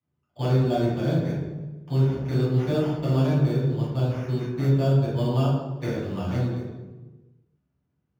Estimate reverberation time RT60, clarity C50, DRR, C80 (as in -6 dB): 1.2 s, 0.5 dB, -9.0 dB, 3.5 dB